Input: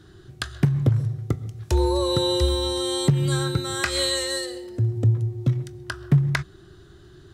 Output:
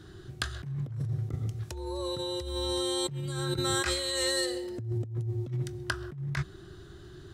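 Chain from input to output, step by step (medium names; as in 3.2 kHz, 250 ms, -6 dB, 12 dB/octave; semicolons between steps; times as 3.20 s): compressor with a negative ratio -28 dBFS, ratio -1; trim -4.5 dB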